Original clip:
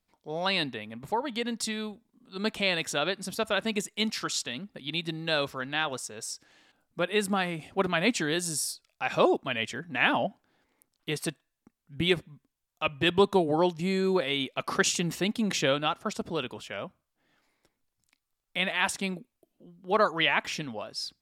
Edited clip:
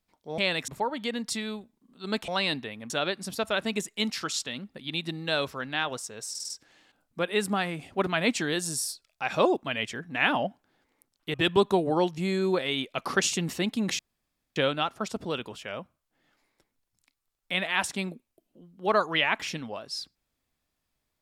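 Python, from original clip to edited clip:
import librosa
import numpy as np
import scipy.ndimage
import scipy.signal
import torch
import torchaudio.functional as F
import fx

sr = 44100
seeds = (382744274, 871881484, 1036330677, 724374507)

y = fx.edit(x, sr, fx.swap(start_s=0.38, length_s=0.62, other_s=2.6, other_length_s=0.3),
    fx.stutter(start_s=6.3, slice_s=0.05, count=5),
    fx.cut(start_s=11.14, length_s=1.82),
    fx.insert_room_tone(at_s=15.61, length_s=0.57), tone=tone)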